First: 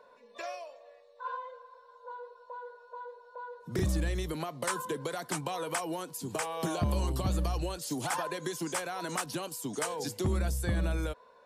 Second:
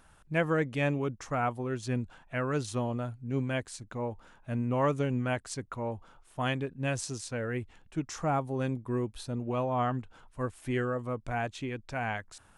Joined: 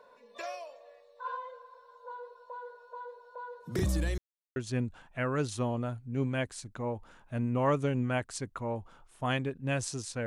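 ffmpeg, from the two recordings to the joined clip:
-filter_complex "[0:a]apad=whole_dur=10.26,atrim=end=10.26,asplit=2[a][b];[a]atrim=end=4.18,asetpts=PTS-STARTPTS,afade=t=out:st=4.176:d=0.004:c=hsin[c];[b]atrim=start=4.18:end=4.56,asetpts=PTS-STARTPTS,volume=0[d];[1:a]atrim=start=1.72:end=7.42,asetpts=PTS-STARTPTS,afade=t=in:d=0.004:c=hsin[e];[c][d][e]concat=n=3:v=0:a=1"

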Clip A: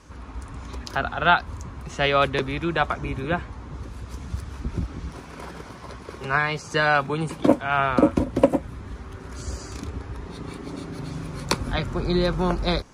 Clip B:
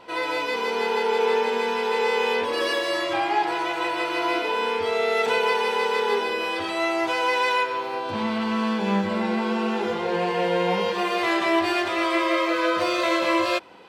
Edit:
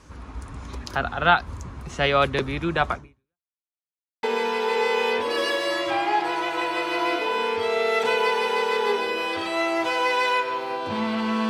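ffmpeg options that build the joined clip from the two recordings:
-filter_complex "[0:a]apad=whole_dur=11.49,atrim=end=11.49,asplit=2[a][b];[a]atrim=end=3.52,asetpts=PTS-STARTPTS,afade=t=out:st=2.95:d=0.57:c=exp[c];[b]atrim=start=3.52:end=4.23,asetpts=PTS-STARTPTS,volume=0[d];[1:a]atrim=start=1.46:end=8.72,asetpts=PTS-STARTPTS,afade=t=in:d=0.004:c=hsin[e];[c][d][e]concat=n=3:v=0:a=1"

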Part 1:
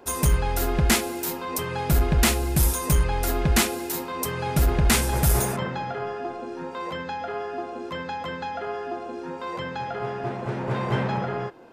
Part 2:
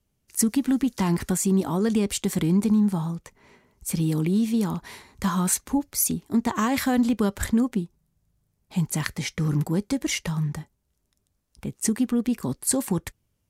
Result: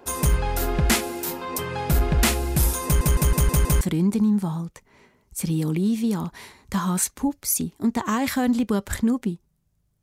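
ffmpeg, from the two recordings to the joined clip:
-filter_complex "[0:a]apad=whole_dur=10.02,atrim=end=10.02,asplit=6[a][b][c][d][e][f];[a]atrim=end=3.012[g];[b]atrim=start=2.848:end=3.012[h];[c]atrim=start=2.848:end=3.012[i];[d]atrim=start=2.848:end=3.012[j];[e]atrim=start=2.848:end=3.012[k];[f]atrim=start=2.848:end=3.012[l];[1:a]atrim=start=2.308:end=8.52[m];[g][h]acrossfade=d=0.004:c1=hsin:c2=hsin[n];[n][i]acrossfade=d=0.004:c1=hsin:c2=hsin[o];[o][j]acrossfade=d=0.004:c1=hsin:c2=hsin[p];[p][k]acrossfade=d=0.004:c1=hsin:c2=hsin[q];[q][l]acrossfade=d=0.004:c1=hsin:c2=hsin[r];[r][m]acrossfade=d=0.004:c1=hsin:c2=hsin"

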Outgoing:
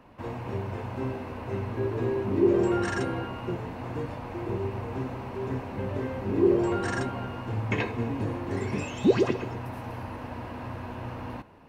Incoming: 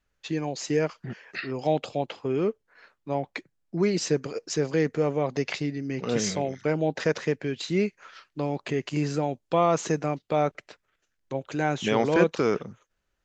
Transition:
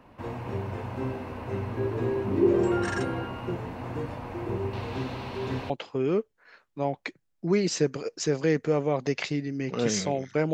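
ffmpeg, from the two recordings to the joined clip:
-filter_complex "[0:a]asettb=1/sr,asplit=3[a][b][c];[a]atrim=end=4.734[d];[b]atrim=start=4.73:end=5.7,asetpts=PTS-STARTPTS,afade=t=in:d=0.004:c=qsin,afade=t=out:st=0.966:d=0.004:c=qsin,equalizer=f=3.9k:t=o:w=1.2:g=14[e];[c]atrim=start=5.696[f];[d][e]acrossfade=d=0.004:c1=hsin:c2=qsin[g];[g][f]acrossfade=d=0.004:c1=qsin:c2=hsin,apad=whole_dur=10.53,atrim=end=10.53,atrim=end=5.702[h];[1:a]atrim=start=1.998:end=6.83[i];[h][i]acrossfade=d=0.004:c1=hsin:c2=hsin"

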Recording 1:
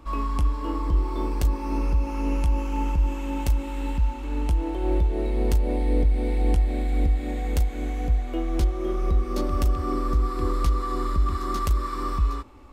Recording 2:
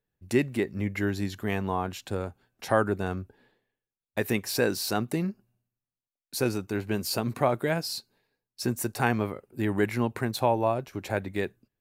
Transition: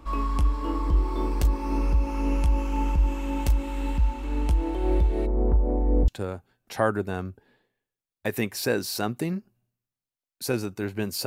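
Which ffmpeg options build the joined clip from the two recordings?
-filter_complex "[0:a]asplit=3[a][b][c];[a]afade=t=out:st=5.25:d=0.02[d];[b]lowpass=f=1.2k:w=0.5412,lowpass=f=1.2k:w=1.3066,afade=t=in:st=5.25:d=0.02,afade=t=out:st=6.08:d=0.02[e];[c]afade=t=in:st=6.08:d=0.02[f];[d][e][f]amix=inputs=3:normalize=0,apad=whole_dur=11.26,atrim=end=11.26,atrim=end=6.082[g];[1:a]atrim=start=1.998:end=7.18[h];[g][h]acrossfade=d=0.004:c1=hsin:c2=hsin"

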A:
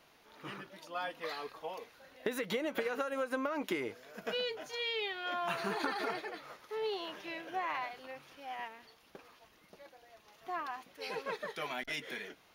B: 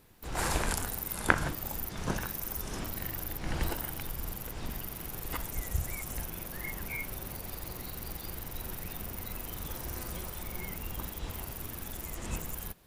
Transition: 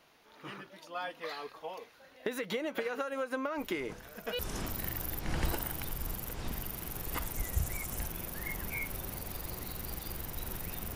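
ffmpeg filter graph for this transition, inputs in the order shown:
-filter_complex "[1:a]asplit=2[a][b];[0:a]apad=whole_dur=10.95,atrim=end=10.95,atrim=end=4.392[c];[b]atrim=start=2.568:end=9.13[d];[a]atrim=start=1.76:end=2.57,asetpts=PTS-STARTPTS,volume=-16.5dB,afade=t=in:d=0.004:c=hsin,afade=t=out:st=0.806:d=0.004:c=hsin,adelay=3580[e];[c][d]acrossfade=d=0.004:c1=hsin:c2=hsin[f];[f][e]amix=inputs=2:normalize=0"

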